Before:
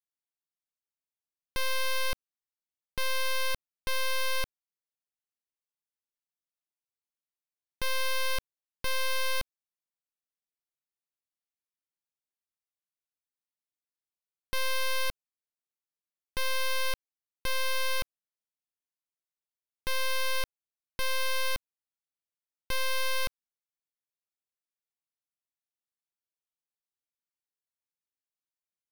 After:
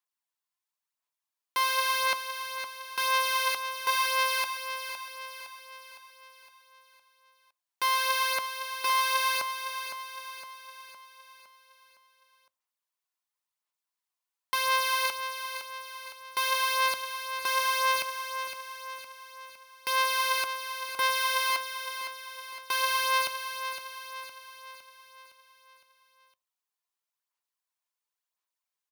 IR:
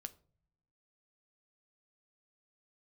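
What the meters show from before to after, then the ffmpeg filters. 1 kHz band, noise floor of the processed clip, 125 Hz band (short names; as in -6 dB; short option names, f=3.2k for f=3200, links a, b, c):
+11.5 dB, under -85 dBFS, under -15 dB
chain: -filter_complex "[0:a]highpass=680,equalizer=f=1k:t=o:w=0.32:g=8.5,aphaser=in_gain=1:out_gain=1:delay=2.9:decay=0.43:speed=0.95:type=sinusoidal,aecho=1:1:511|1022|1533|2044|2555|3066:0.355|0.181|0.0923|0.0471|0.024|0.0122,asplit=2[a][b];[1:a]atrim=start_sample=2205,lowshelf=f=330:g=12[c];[b][c]afir=irnorm=-1:irlink=0,volume=-2.5dB[d];[a][d]amix=inputs=2:normalize=0"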